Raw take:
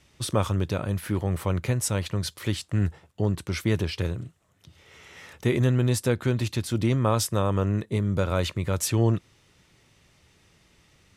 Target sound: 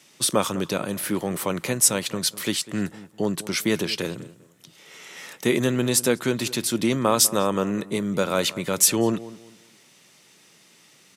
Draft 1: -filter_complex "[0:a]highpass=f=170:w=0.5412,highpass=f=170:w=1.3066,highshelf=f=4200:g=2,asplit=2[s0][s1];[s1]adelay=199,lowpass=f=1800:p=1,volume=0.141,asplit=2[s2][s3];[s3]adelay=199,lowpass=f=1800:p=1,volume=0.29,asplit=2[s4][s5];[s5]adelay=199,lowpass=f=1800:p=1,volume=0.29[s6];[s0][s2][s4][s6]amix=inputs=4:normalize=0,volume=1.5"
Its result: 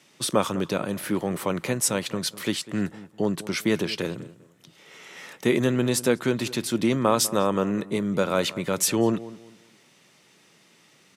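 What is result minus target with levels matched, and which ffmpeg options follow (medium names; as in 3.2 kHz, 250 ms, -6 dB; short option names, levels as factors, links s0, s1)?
8 kHz band -4.0 dB
-filter_complex "[0:a]highpass=f=170:w=0.5412,highpass=f=170:w=1.3066,highshelf=f=4200:g=10,asplit=2[s0][s1];[s1]adelay=199,lowpass=f=1800:p=1,volume=0.141,asplit=2[s2][s3];[s3]adelay=199,lowpass=f=1800:p=1,volume=0.29,asplit=2[s4][s5];[s5]adelay=199,lowpass=f=1800:p=1,volume=0.29[s6];[s0][s2][s4][s6]amix=inputs=4:normalize=0,volume=1.5"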